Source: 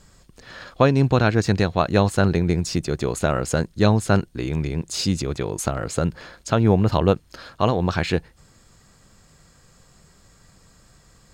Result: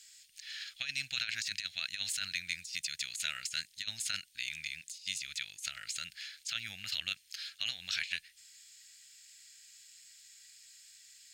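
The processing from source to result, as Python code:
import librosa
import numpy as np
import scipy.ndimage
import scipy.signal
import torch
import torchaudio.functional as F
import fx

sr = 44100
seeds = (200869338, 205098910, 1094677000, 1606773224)

y = scipy.signal.sosfilt(scipy.signal.cheby2(4, 40, 1100.0, 'highpass', fs=sr, output='sos'), x)
y = fx.over_compress(y, sr, threshold_db=-36.0, ratio=-0.5)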